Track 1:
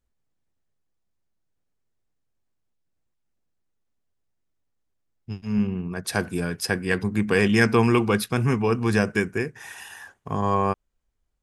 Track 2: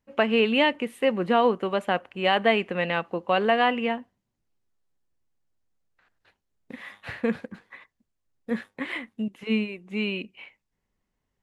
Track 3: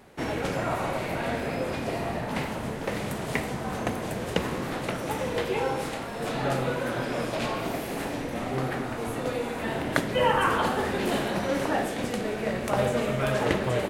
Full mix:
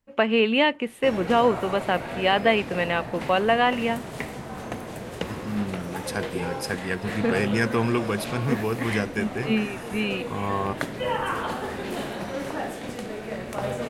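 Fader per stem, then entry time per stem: -5.0, +1.0, -4.0 dB; 0.00, 0.00, 0.85 s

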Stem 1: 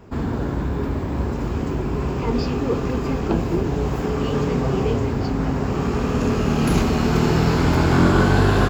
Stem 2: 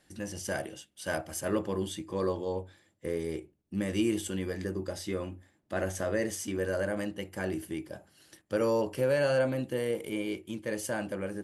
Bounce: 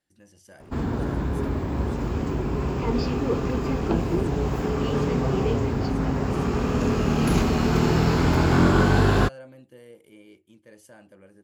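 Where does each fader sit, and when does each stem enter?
-2.5, -16.5 dB; 0.60, 0.00 s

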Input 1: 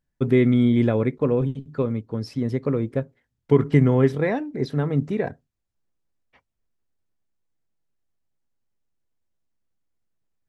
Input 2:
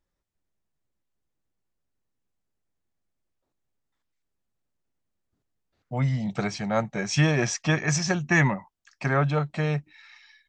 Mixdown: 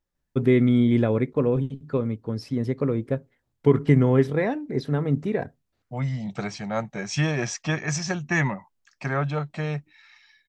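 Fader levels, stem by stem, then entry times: -1.0, -2.5 dB; 0.15, 0.00 s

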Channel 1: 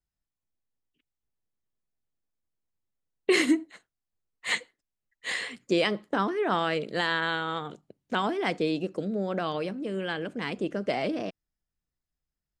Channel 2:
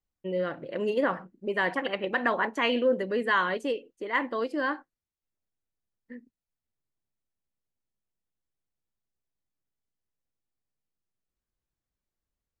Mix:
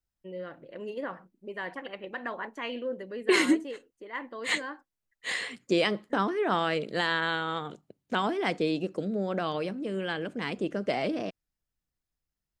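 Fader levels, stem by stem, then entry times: -0.5, -9.5 dB; 0.00, 0.00 s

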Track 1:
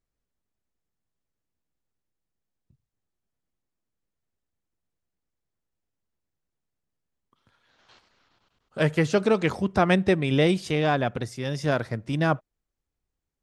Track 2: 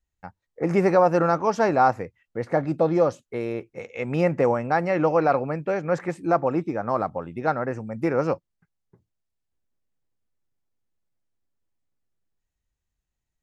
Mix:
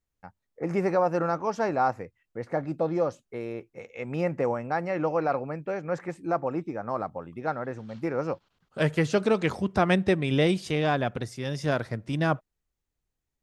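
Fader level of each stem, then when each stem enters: -2.0, -6.0 dB; 0.00, 0.00 s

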